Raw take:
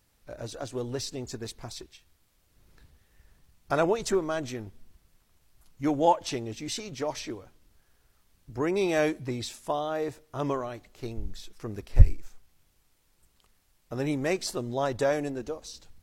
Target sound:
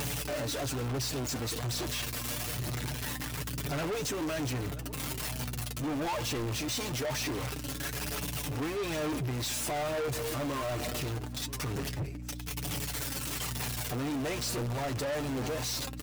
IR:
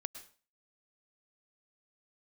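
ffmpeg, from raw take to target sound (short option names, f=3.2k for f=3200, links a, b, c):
-filter_complex "[0:a]aeval=exprs='val(0)+0.5*0.0562*sgn(val(0))':c=same,acompressor=mode=upward:threshold=-27dB:ratio=2.5,highpass=f=86:w=0.5412,highpass=f=86:w=1.3066,aecho=1:1:6.7:0.51,aeval=exprs='val(0)+0.02*(sin(2*PI*60*n/s)+sin(2*PI*2*60*n/s)/2+sin(2*PI*3*60*n/s)/3+sin(2*PI*4*60*n/s)/4+sin(2*PI*5*60*n/s)/5)':c=same,asplit=2[a][b];[b]aecho=0:1:985:0.0631[c];[a][c]amix=inputs=2:normalize=0,aphaser=in_gain=1:out_gain=1:delay=3.8:decay=0.33:speed=1.1:type=sinusoidal,equalizer=f=2.7k:w=6.7:g=2.5,flanger=delay=7:depth=1.5:regen=35:speed=0.24:shape=sinusoidal,asoftclip=type=tanh:threshold=-31.5dB,volume=1dB"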